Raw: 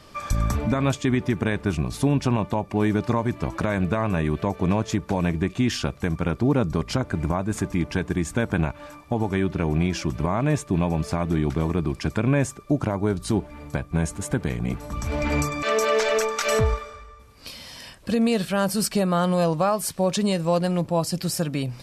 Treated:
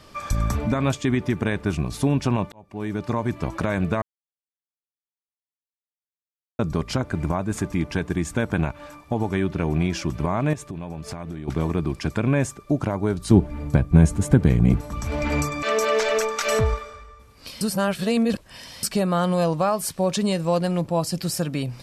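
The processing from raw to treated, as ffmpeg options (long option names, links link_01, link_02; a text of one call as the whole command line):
ffmpeg -i in.wav -filter_complex "[0:a]asettb=1/sr,asplit=3[link_01][link_02][link_03];[link_01]atrim=end=10.534[link_04];[link_02]atrim=start=10.53:end=11.48,asetpts=PTS-STARTPTS,afade=type=in:duration=0.004:curve=qsin,afade=type=out:start_time=0.946:duration=0.004:curve=qsin,acompressor=threshold=-29dB:ratio=8:attack=3.2:release=140:knee=1:detection=peak[link_05];[link_03]atrim=start=11.476[link_06];[link_04][link_05]acrossfade=duration=0.004:curve1=hsin:curve2=qsin[link_07];[link_07][link_06]acrossfade=duration=0.004:curve1=qsin:curve2=hsin,asettb=1/sr,asplit=3[link_08][link_09][link_10];[link_08]atrim=end=13.314[link_11];[link_09]atrim=start=13.31:end=14.81,asetpts=PTS-STARTPTS,afade=type=in:duration=0.004:curve=qsin,afade=type=out:start_time=1.496:duration=0.004:curve=qsin,lowshelf=frequency=410:gain=11.5[link_12];[link_10]atrim=start=14.806[link_13];[link_11][link_12]acrossfade=duration=0.004:curve1=hsin:curve2=qsin[link_14];[link_14][link_13]acrossfade=duration=0.004:curve1=qsin:curve2=hsin,asplit=6[link_15][link_16][link_17][link_18][link_19][link_20];[link_15]atrim=end=2.52,asetpts=PTS-STARTPTS,afade=type=out:start_time=2.516:duration=0.004:curve=hsin[link_21];[link_16]atrim=start=2.52:end=4.02,asetpts=PTS-STARTPTS,afade=type=in:duration=0.79,afade=type=out:start_time=1.496:duration=0.004:curve=hsin[link_22];[link_17]atrim=start=4.02:end=6.59,asetpts=PTS-STARTPTS,volume=0[link_23];[link_18]atrim=start=6.59:end=17.612,asetpts=PTS-STARTPTS,afade=type=in:duration=0.004:curve=hsin[link_24];[link_19]atrim=start=17.608:end=18.832,asetpts=PTS-STARTPTS,areverse[link_25];[link_20]atrim=start=18.828[link_26];[link_21][link_22][link_23][link_24]concat=n=4:v=0:a=1[link_27];[link_27][link_25]acrossfade=duration=0.004:curve1=hsin:curve2=hsin[link_28];[link_28][link_26]acrossfade=duration=0.004:curve1=hsin:curve2=hsin" out.wav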